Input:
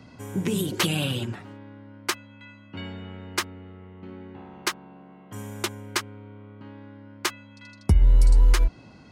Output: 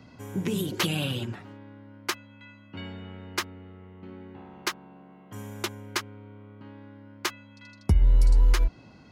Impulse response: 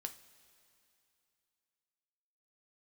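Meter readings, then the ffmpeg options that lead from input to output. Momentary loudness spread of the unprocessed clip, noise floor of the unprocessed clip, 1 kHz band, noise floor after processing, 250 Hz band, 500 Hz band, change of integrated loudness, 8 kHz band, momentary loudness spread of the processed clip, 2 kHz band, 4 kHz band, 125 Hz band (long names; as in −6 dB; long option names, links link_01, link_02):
24 LU, −49 dBFS, −2.5 dB, −52 dBFS, −2.5 dB, −2.5 dB, −2.5 dB, −4.5 dB, 24 LU, −2.5 dB, −2.5 dB, −2.5 dB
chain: -af "equalizer=frequency=8600:width_type=o:width=0.34:gain=-6,volume=-2.5dB"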